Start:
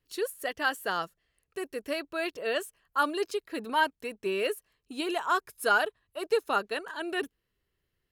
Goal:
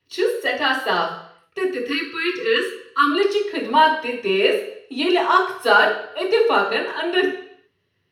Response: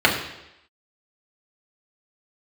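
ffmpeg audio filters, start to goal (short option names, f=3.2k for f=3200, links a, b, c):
-filter_complex "[0:a]asplit=3[a][b][c];[a]afade=t=out:st=1.66:d=0.02[d];[b]asuperstop=centerf=720:order=20:qfactor=1.5,afade=t=in:st=1.66:d=0.02,afade=t=out:st=3.1:d=0.02[e];[c]afade=t=in:st=3.1:d=0.02[f];[d][e][f]amix=inputs=3:normalize=0[g];[1:a]atrim=start_sample=2205,asetrate=57330,aresample=44100[h];[g][h]afir=irnorm=-1:irlink=0,volume=-7.5dB"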